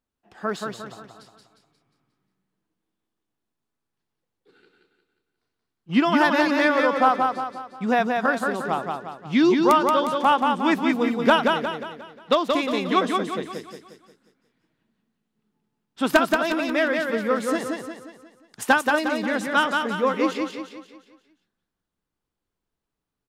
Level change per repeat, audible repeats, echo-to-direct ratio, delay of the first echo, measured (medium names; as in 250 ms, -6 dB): -7.0 dB, 5, -3.0 dB, 178 ms